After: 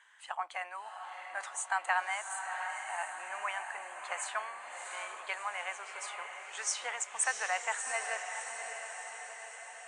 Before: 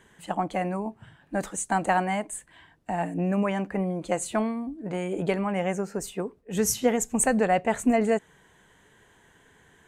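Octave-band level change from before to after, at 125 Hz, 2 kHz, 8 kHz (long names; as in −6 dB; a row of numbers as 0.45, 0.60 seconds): below −40 dB, 0.0 dB, −5.0 dB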